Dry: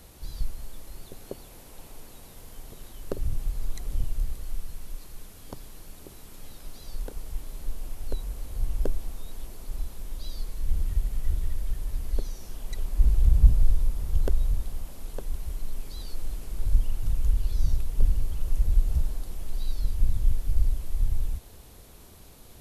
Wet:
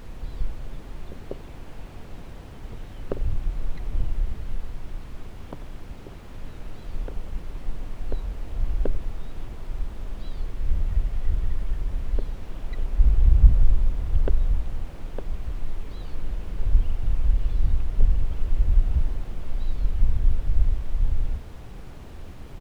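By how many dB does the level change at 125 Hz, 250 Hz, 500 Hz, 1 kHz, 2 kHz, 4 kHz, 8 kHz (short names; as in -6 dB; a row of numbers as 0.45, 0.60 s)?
+3.0, +4.5, +3.5, +5.0, +5.0, -2.5, -10.5 dB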